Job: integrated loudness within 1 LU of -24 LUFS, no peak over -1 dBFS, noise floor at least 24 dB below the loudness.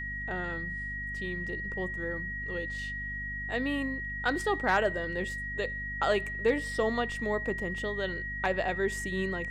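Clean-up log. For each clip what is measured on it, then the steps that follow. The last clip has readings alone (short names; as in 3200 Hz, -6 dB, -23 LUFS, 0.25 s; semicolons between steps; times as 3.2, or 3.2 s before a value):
hum 50 Hz; harmonics up to 250 Hz; hum level -39 dBFS; steady tone 1900 Hz; tone level -35 dBFS; loudness -31.5 LUFS; peak -15.5 dBFS; loudness target -24.0 LUFS
-> de-hum 50 Hz, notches 5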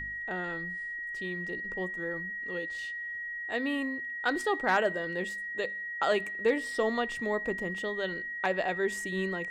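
hum none; steady tone 1900 Hz; tone level -35 dBFS
-> notch 1900 Hz, Q 30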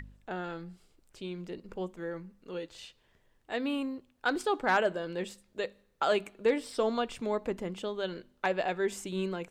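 steady tone none; loudness -33.5 LUFS; peak -16.0 dBFS; loudness target -24.0 LUFS
-> gain +9.5 dB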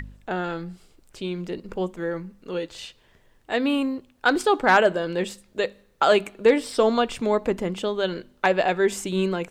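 loudness -24.0 LUFS; peak -6.5 dBFS; noise floor -60 dBFS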